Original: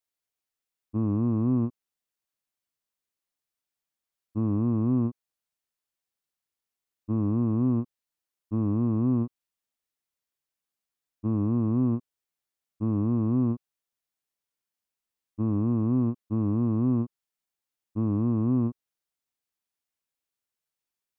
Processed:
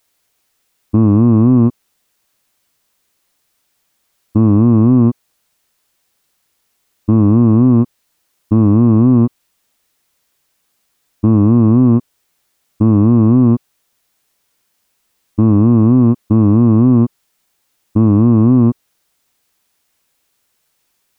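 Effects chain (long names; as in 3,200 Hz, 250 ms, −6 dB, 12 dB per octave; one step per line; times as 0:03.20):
boost into a limiter +24.5 dB
level −1 dB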